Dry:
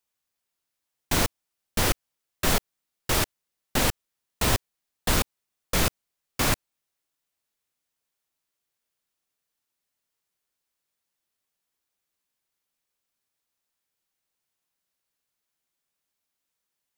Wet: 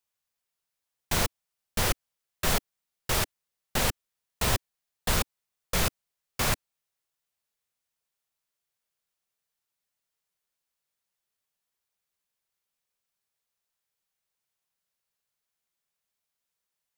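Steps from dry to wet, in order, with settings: bell 290 Hz -11 dB 0.33 oct; gain -2.5 dB

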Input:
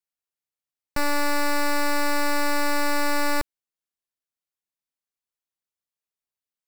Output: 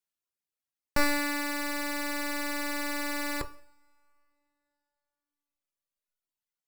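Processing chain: two-slope reverb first 0.59 s, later 3.5 s, from -28 dB, DRR 6 dB; reverb removal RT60 2 s

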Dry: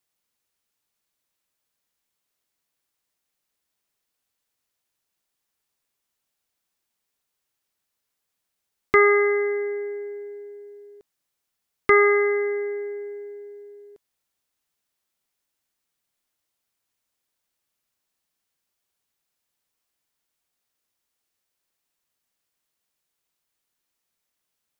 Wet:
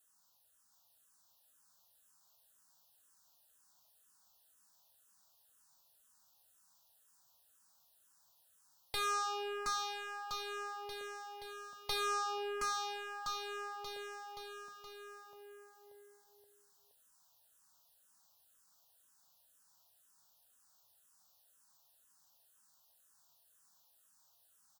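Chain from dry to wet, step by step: low shelf 220 Hz -8.5 dB; notch 1200 Hz, Q 27; de-hum 65.79 Hz, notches 18; in parallel at +1 dB: compressor, threshold -32 dBFS, peak gain reduction 17.5 dB; on the sum: soft clip -21.5 dBFS, distortion -7 dB; fixed phaser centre 920 Hz, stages 4; one-sided clip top -43.5 dBFS; on a send: bouncing-ball echo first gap 0.72 s, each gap 0.9×, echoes 5; on the sum: endless phaser -2 Hz; gain +5.5 dB

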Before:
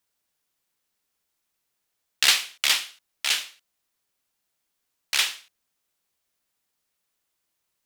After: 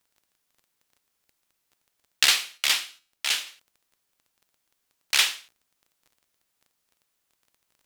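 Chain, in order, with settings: crackle 15/s -47 dBFS; 2.25–3.47 resonator 82 Hz, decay 0.45 s, harmonics all, mix 40%; gain +2 dB

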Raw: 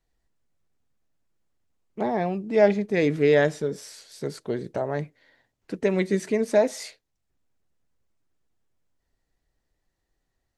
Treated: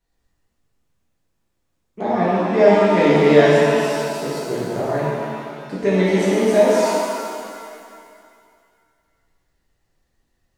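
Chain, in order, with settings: shimmer reverb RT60 2.2 s, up +7 st, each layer -8 dB, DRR -7.5 dB; gain -1 dB

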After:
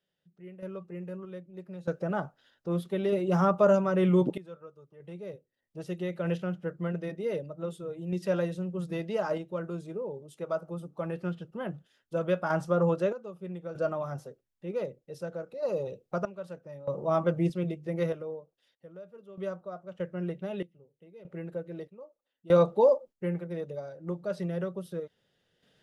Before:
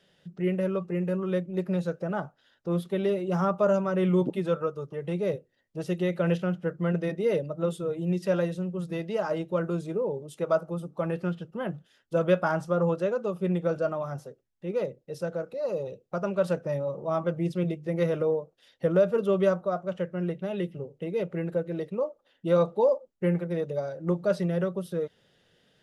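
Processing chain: random-step tremolo 1.6 Hz, depth 95%; gain +1.5 dB

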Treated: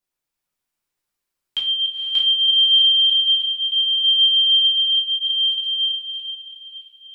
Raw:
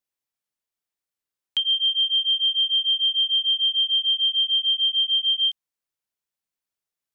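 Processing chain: regenerating reverse delay 0.31 s, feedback 53%, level -2 dB; diffused feedback echo 0.48 s, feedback 54%, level -10 dB; shoebox room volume 50 m³, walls mixed, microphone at 0.95 m

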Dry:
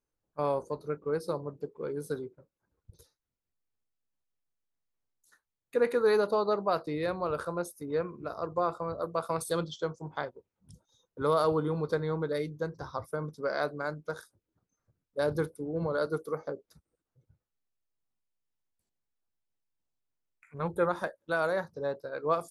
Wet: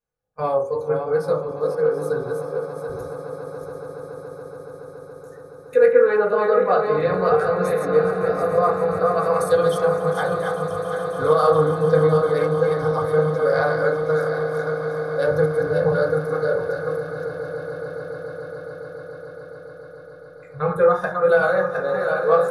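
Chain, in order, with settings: regenerating reverse delay 0.369 s, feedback 47%, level -4.5 dB; 5.9–7.16 LPF 2700 Hz -> 4700 Hz 24 dB/oct; spectral noise reduction 10 dB; in parallel at 0 dB: compressor, threshold -38 dBFS, peak gain reduction 16.5 dB; on the sum: bell 250 Hz -13 dB 0.54 oct; swelling echo 0.141 s, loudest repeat 8, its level -17 dB; reverb RT60 0.35 s, pre-delay 3 ms, DRR -5.5 dB

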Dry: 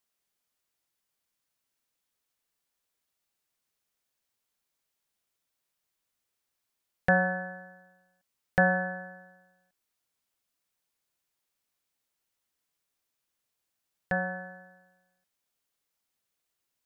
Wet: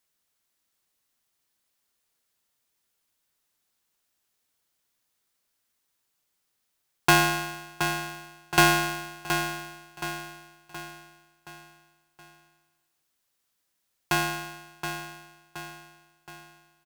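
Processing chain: bell 1500 Hz -8.5 dB 0.44 oct; feedback echo 0.722 s, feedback 47%, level -8 dB; polarity switched at an audio rate 890 Hz; gain +5.5 dB

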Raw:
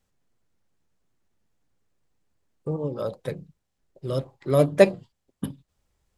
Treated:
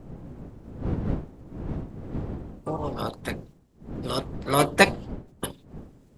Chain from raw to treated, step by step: spectral limiter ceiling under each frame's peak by 21 dB; wind noise 230 Hz -34 dBFS; gain -1.5 dB

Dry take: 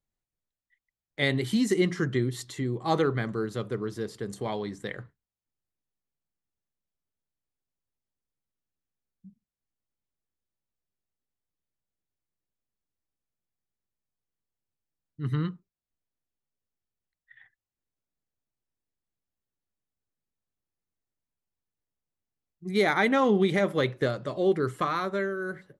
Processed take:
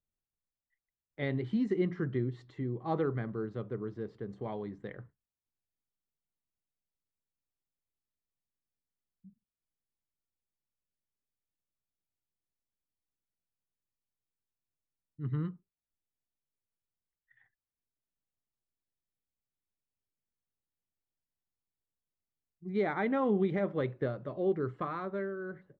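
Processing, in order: tape spacing loss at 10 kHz 41 dB; gain -4.5 dB

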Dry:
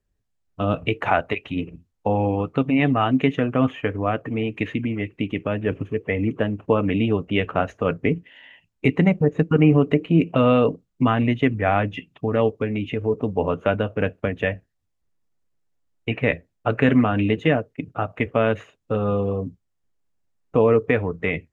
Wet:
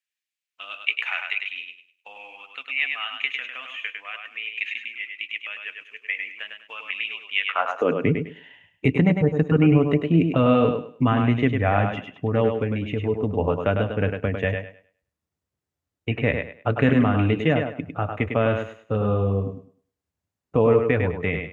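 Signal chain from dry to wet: high-pass sweep 2400 Hz -> 77 Hz, 7.4–8.18; on a send: thinning echo 0.102 s, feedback 26%, high-pass 190 Hz, level -5 dB; on the sum: gain -2.5 dB

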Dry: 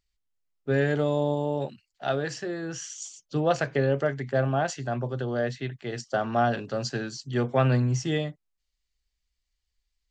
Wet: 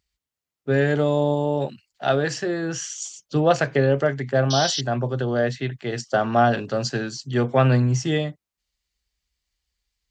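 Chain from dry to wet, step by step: HPF 48 Hz; in parallel at -2.5 dB: vocal rider 2 s; on the sum: painted sound noise, 4.5–4.81, 2900–6100 Hz -26 dBFS

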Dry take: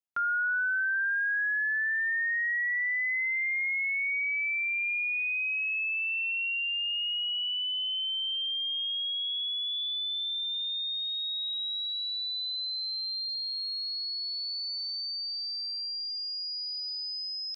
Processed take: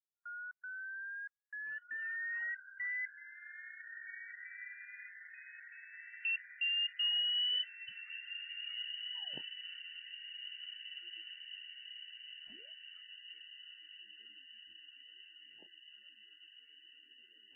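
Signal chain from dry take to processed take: notches 60/120/180 Hz; LFO band-pass square 0.16 Hz 330–3100 Hz; in parallel at -8 dB: bit-crush 6-bit; on the sum: step gate "..xx.xxxxx" 118 bpm -60 dB; on a send: diffused feedback echo 1.829 s, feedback 66%, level -9 dB; on the sum: gain -4 dB; MP3 8 kbps 12000 Hz

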